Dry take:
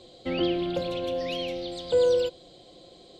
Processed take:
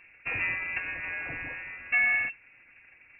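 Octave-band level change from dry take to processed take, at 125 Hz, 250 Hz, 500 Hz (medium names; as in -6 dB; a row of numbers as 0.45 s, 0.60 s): -8.5 dB, -20.5 dB, -26.0 dB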